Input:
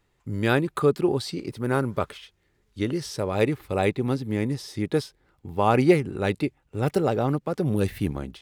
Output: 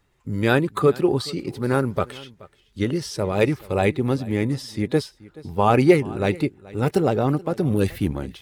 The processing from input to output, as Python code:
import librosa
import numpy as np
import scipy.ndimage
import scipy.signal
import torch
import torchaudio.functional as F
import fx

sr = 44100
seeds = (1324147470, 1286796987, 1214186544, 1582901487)

y = fx.spec_quant(x, sr, step_db=15)
y = y + 10.0 ** (-21.0 / 20.0) * np.pad(y, (int(428 * sr / 1000.0), 0))[:len(y)]
y = y * librosa.db_to_amplitude(3.5)